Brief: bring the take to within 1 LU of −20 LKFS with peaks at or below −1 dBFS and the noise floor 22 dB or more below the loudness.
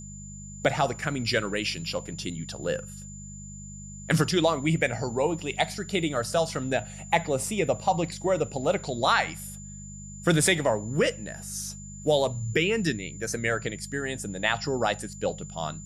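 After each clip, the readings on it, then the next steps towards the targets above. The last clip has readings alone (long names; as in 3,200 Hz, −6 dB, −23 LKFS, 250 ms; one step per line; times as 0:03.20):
mains hum 50 Hz; hum harmonics up to 200 Hz; level of the hum −40 dBFS; interfering tone 7,100 Hz; level of the tone −44 dBFS; integrated loudness −27.5 LKFS; sample peak −7.5 dBFS; target loudness −20.0 LKFS
→ hum removal 50 Hz, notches 4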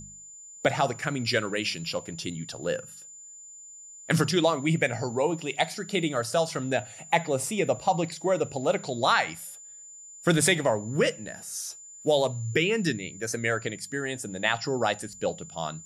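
mains hum none found; interfering tone 7,100 Hz; level of the tone −44 dBFS
→ notch filter 7,100 Hz, Q 30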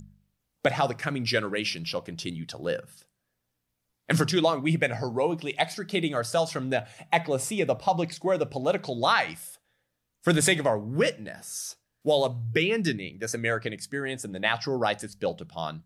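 interfering tone none found; integrated loudness −27.5 LKFS; sample peak −7.5 dBFS; target loudness −20.0 LKFS
→ level +7.5 dB
brickwall limiter −1 dBFS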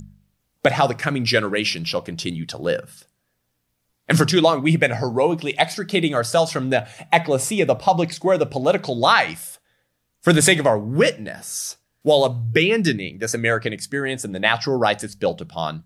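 integrated loudness −20.0 LKFS; sample peak −1.0 dBFS; background noise floor −73 dBFS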